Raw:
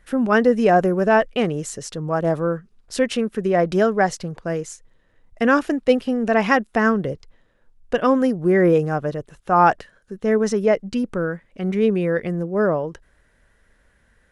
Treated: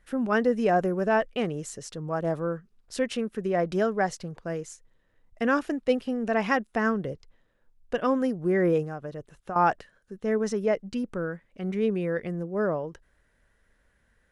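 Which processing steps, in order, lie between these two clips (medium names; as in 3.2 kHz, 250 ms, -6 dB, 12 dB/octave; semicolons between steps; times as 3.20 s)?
8.82–9.56 s: compression 10:1, threshold -24 dBFS, peak gain reduction 12 dB; trim -7.5 dB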